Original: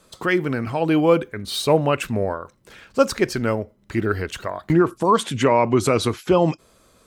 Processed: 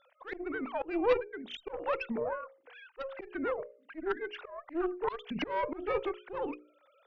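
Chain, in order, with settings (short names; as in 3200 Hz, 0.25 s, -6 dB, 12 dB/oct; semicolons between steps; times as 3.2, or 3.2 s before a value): sine-wave speech; notches 60/120/180/240/300/360/420/480/540/600 Hz; compressor 1.5:1, threshold -42 dBFS, peak gain reduction 12 dB; added harmonics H 2 -10 dB, 4 -11 dB, 5 -26 dB, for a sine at -14.5 dBFS; auto swell 0.205 s; gain -2 dB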